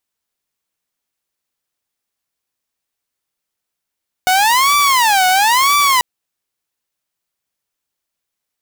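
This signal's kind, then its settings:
siren wail 737–1,160 Hz 1 per second saw −7.5 dBFS 1.74 s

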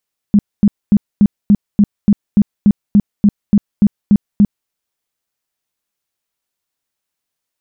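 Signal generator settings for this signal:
tone bursts 205 Hz, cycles 10, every 0.29 s, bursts 15, −4.5 dBFS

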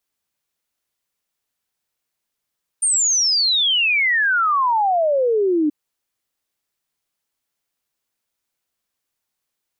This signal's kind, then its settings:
exponential sine sweep 9,100 Hz → 290 Hz 2.88 s −14.5 dBFS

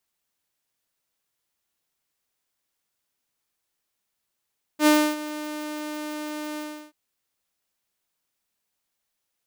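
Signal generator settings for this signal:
note with an ADSR envelope saw 302 Hz, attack 75 ms, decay 293 ms, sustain −17 dB, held 1.79 s, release 342 ms −11 dBFS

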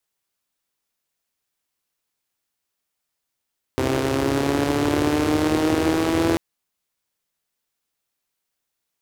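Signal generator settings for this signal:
pulse-train model of a four-cylinder engine, changing speed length 2.59 s, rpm 3,900, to 5,000, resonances 100/310 Hz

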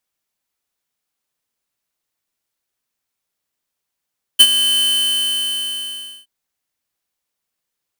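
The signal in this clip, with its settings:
note with an ADSR envelope square 3,050 Hz, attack 16 ms, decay 56 ms, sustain −11 dB, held 0.41 s, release 1,460 ms −4.5 dBFS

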